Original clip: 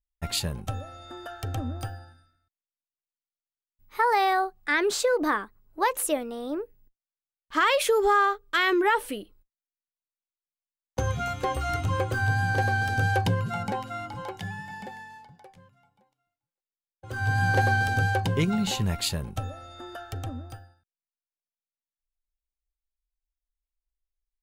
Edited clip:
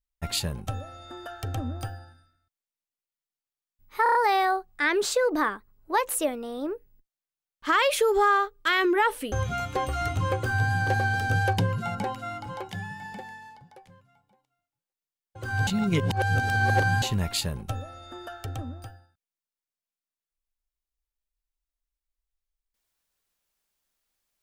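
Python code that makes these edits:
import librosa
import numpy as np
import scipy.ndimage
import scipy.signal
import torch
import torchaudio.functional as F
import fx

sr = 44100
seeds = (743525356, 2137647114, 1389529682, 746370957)

y = fx.edit(x, sr, fx.stutter(start_s=4.03, slice_s=0.03, count=5),
    fx.cut(start_s=9.2, length_s=1.8),
    fx.reverse_span(start_s=17.35, length_s=1.35), tone=tone)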